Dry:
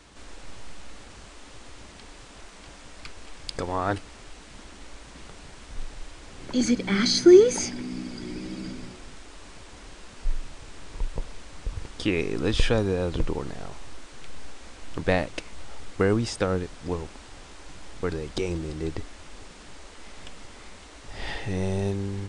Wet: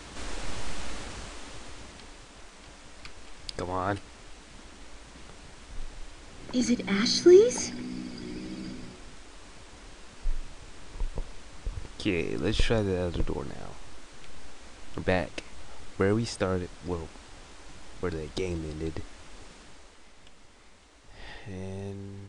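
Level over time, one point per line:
0:00.86 +8 dB
0:02.28 −3 dB
0:19.54 −3 dB
0:20.15 −10.5 dB

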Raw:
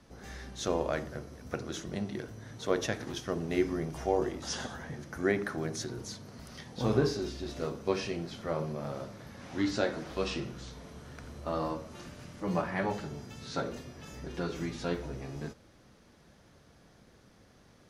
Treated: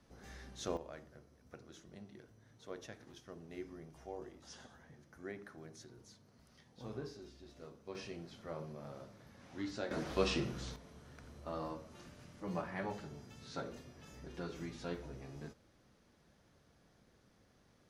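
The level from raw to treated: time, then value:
−8 dB
from 0:00.77 −18 dB
from 0:07.95 −11.5 dB
from 0:09.91 0 dB
from 0:10.76 −9 dB

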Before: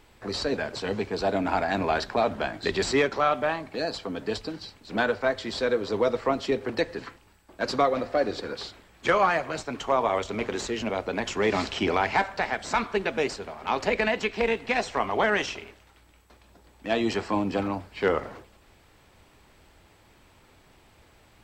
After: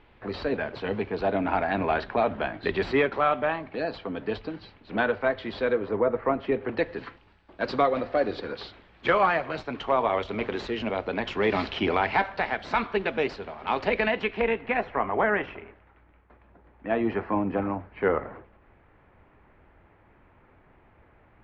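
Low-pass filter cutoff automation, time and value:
low-pass filter 24 dB per octave
0:05.70 3,200 Hz
0:06.05 1,800 Hz
0:07.06 3,900 Hz
0:13.97 3,900 Hz
0:15.00 2,100 Hz

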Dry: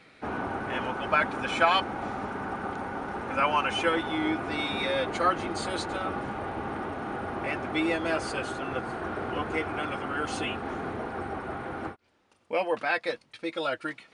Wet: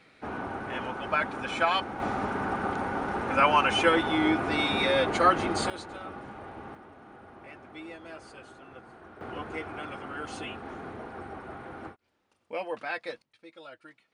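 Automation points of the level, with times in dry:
−3 dB
from 0:02.00 +3.5 dB
from 0:05.70 −9 dB
from 0:06.75 −16 dB
from 0:09.21 −6.5 dB
from 0:13.22 −17 dB

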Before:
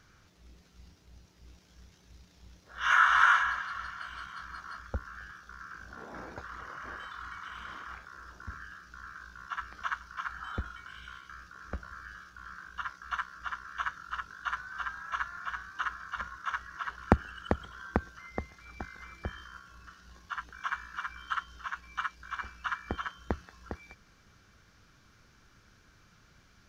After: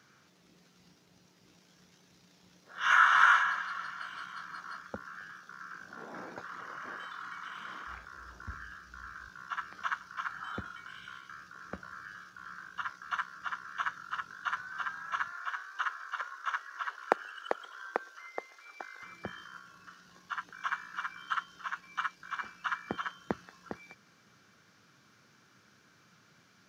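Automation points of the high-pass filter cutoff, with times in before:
high-pass filter 24 dB per octave
140 Hz
from 0:07.86 42 Hz
from 0:09.28 110 Hz
from 0:15.32 420 Hz
from 0:19.03 130 Hz

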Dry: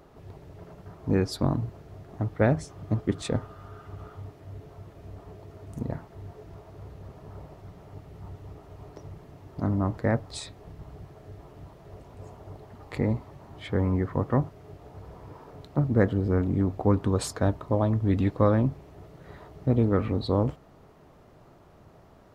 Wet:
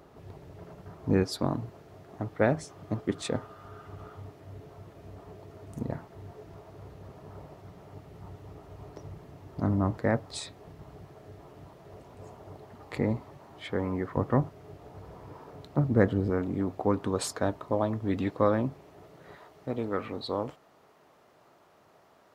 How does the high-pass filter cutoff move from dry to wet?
high-pass filter 6 dB per octave
72 Hz
from 0:01.23 250 Hz
from 0:03.65 120 Hz
from 0:08.55 51 Hz
from 0:09.96 150 Hz
from 0:13.38 330 Hz
from 0:14.17 95 Hz
from 0:16.30 310 Hz
from 0:19.35 740 Hz

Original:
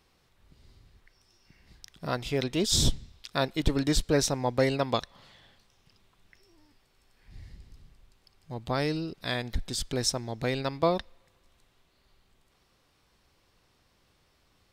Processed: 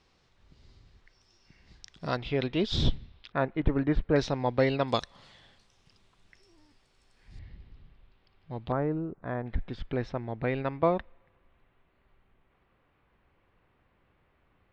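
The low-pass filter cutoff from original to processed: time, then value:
low-pass filter 24 dB per octave
6,900 Hz
from 0:02.17 3,600 Hz
from 0:03.32 2,100 Hz
from 0:04.16 3,900 Hz
from 0:04.88 9,300 Hz
from 0:07.39 3,500 Hz
from 0:08.72 1,400 Hz
from 0:09.46 2,500 Hz

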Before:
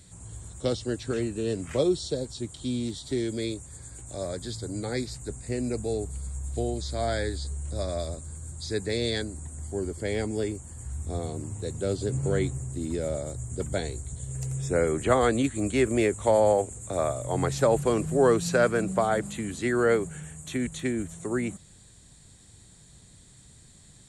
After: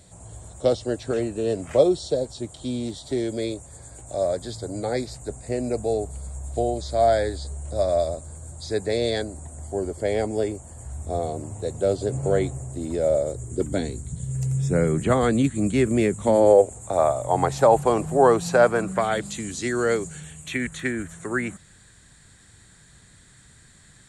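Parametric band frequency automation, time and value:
parametric band +12.5 dB 0.96 octaves
0:13.05 650 Hz
0:14.12 170 Hz
0:16.17 170 Hz
0:16.80 810 Hz
0:18.74 810 Hz
0:19.35 5,700 Hz
0:20.06 5,700 Hz
0:20.70 1,600 Hz

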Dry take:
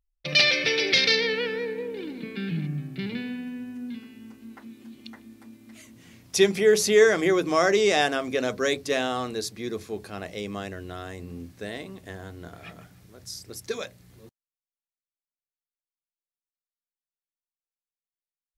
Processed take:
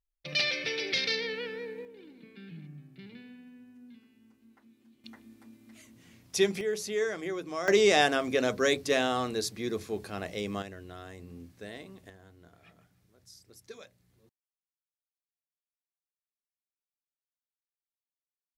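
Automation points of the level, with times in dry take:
−9 dB
from 0:01.85 −16.5 dB
from 0:05.04 −6 dB
from 0:06.61 −13 dB
from 0:07.68 −1 dB
from 0:10.62 −8 dB
from 0:12.10 −15.5 dB

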